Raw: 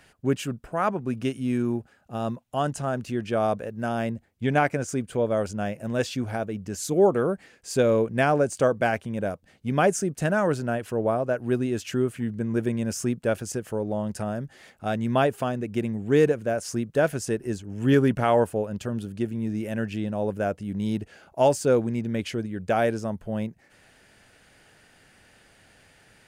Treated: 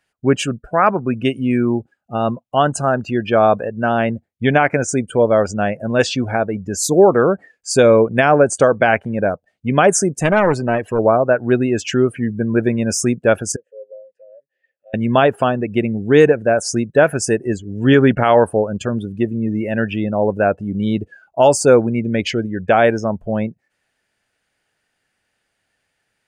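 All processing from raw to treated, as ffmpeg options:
-filter_complex "[0:a]asettb=1/sr,asplit=3[a][b][c];[a]atrim=end=10.124[d];[b]atrim=start=10.12:end=10.99,asetpts=PTS-STARTPTS,afade=t=in:d=0.004:c=qsin,afade=t=out:st=0.866:d=0.004:c=qsin,bandreject=f=1.4k:w=6.6,aeval=exprs='clip(val(0),-1,0.0531)':c=same[e];[c]atrim=start=10.986[f];[d][e]acrossfade=d=0.004:c1=hsin:c2=qsin[g];[g][f]acrossfade=d=0.004:c1=qsin:c2=hsin,asettb=1/sr,asplit=3[h][i][j];[h]atrim=end=13.564[k];[i]atrim=start=13.56:end=14.94,asetpts=PTS-STARTPTS,afade=t=in:d=0.004:c=qsin,afade=t=out:st=1.376:d=0.004:c=qsin,acompressor=threshold=-46dB:ratio=2:attack=3.2:release=140:knee=1:detection=peak,asplit=3[l][m][n];[l]bandpass=f=530:t=q:w=8,volume=0dB[o];[m]bandpass=f=1.84k:t=q:w=8,volume=-6dB[p];[n]bandpass=f=2.48k:t=q:w=8,volume=-9dB[q];[o][p][q]amix=inputs=3:normalize=0[r];[j]atrim=start=14.936[s];[k][r]acrossfade=d=0.004:c1=hsin:c2=qsin[t];[t][s]acrossfade=d=0.004:c1=qsin:c2=hsin,lowshelf=f=440:g=-6.5,afftdn=nr=27:nf=-42,alimiter=level_in=14.5dB:limit=-1dB:release=50:level=0:latency=1,volume=-1dB"

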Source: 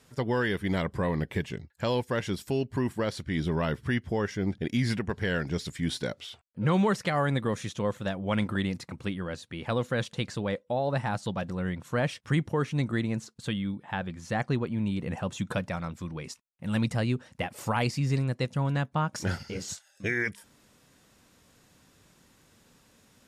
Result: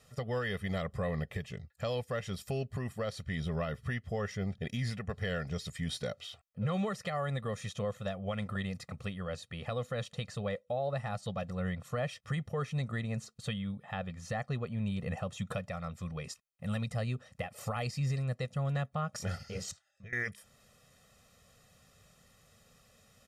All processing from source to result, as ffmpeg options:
-filter_complex "[0:a]asettb=1/sr,asplit=3[a][b][c];[a]atrim=end=19.714[d];[b]atrim=start=19.71:end=20.13,asetpts=PTS-STARTPTS,afade=t=in:d=0.004:c=qsin,afade=t=out:st=0.416:d=0.004:c=qsin,lowpass=f=1.1k:p=1,equalizer=f=470:t=o:w=2.5:g=-8.5,acompressor=threshold=-48dB:ratio=2.5:attack=3.2:release=140:knee=1:detection=peak[e];[c]atrim=start=20.126[f];[d][e]acrossfade=d=0.004:c1=hsin:c2=qsin[g];[g][f]acrossfade=d=0.004:c1=qsin:c2=hsin,aecho=1:1:1.6:0.86,alimiter=limit=-20.5dB:level=0:latency=1:release=346,volume=-4.5dB"

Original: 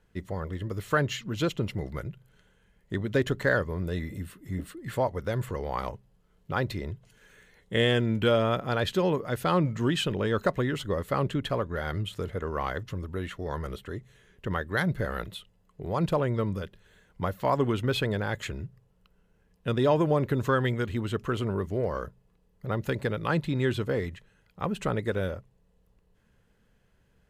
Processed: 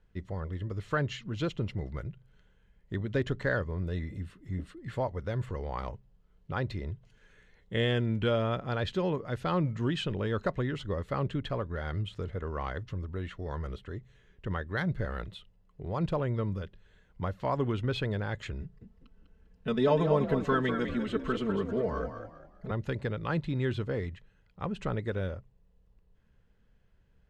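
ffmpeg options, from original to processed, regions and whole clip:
-filter_complex "[0:a]asettb=1/sr,asplit=3[a][b][c];[a]atrim=end=18.614[d];[b]atrim=start=18.61:end=22.71,asetpts=PTS-STARTPTS,afade=t=in:d=0.004:c=qsin,afade=t=out:st=4.096:d=0.004:c=qsin,aecho=1:1:4.6:1,atrim=end_sample=180810,asplit=5[e][f][g][h][i];[f]adelay=199,afreqshift=45,volume=-8dB[j];[g]adelay=398,afreqshift=90,volume=-17.9dB[k];[h]adelay=597,afreqshift=135,volume=-27.8dB[l];[i]adelay=796,afreqshift=180,volume=-37.7dB[m];[e][j][k][l][m]amix=inputs=5:normalize=0,atrim=end_sample=180810[n];[c]atrim=start=22.706[o];[d][n]acrossfade=d=0.004:c1=hsin:c2=qsin[p];[p][o]acrossfade=d=0.004:c1=qsin:c2=hsin,lowpass=5.5k,lowshelf=f=92:g=10,volume=-5.5dB"

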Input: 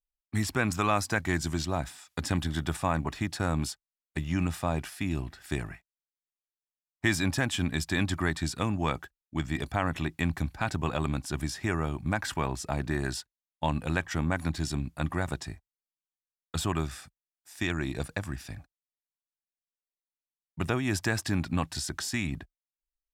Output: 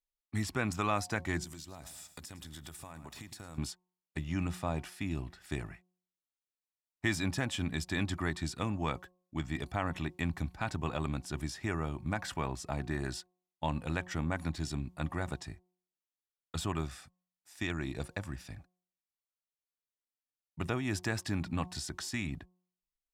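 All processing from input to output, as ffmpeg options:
-filter_complex "[0:a]asettb=1/sr,asplit=3[a][b][c];[a]atrim=end=1.444[d];[b]atrim=start=1.44:end=3.58,asetpts=PTS-STARTPTS,afade=t=in:d=0.004:c=qsin,afade=t=out:st=2.136:d=0.004:c=qsin,aemphasis=mode=production:type=75fm,aecho=1:1:105|210|315:0.15|0.0464|0.0144,atrim=end_sample=94374,acompressor=threshold=-37dB:ratio=16:attack=3.2:release=140:knee=1:detection=peak[e];[c]atrim=start=3.576[f];[d][e]acrossfade=d=0.004:c1=hsin:c2=qsin[g];[g][f]acrossfade=d=0.004:c1=qsin:c2=hsin,highshelf=f=11k:g=-5.5,bandreject=f=1.6k:w=21,bandreject=f=181:t=h:w=4,bandreject=f=362:t=h:w=4,bandreject=f=543:t=h:w=4,bandreject=f=724:t=h:w=4,bandreject=f=905:t=h:w=4,bandreject=f=1.086k:t=h:w=4,volume=-5dB"

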